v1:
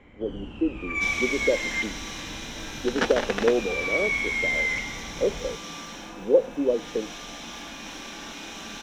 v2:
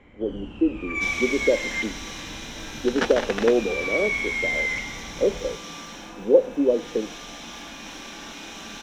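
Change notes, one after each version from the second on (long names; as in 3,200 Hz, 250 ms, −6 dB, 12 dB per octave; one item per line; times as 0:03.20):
speech: send on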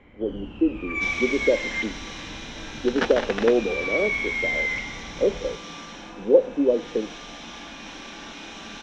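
master: add low-pass filter 5,300 Hz 12 dB per octave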